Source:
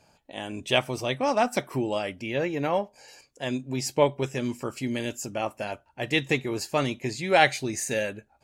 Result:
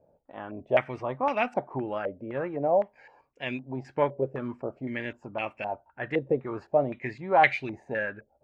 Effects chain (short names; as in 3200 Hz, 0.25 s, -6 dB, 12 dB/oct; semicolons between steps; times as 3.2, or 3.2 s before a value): vibrato 6.2 Hz 15 cents; stepped low-pass 3.9 Hz 540–2400 Hz; gain -5.5 dB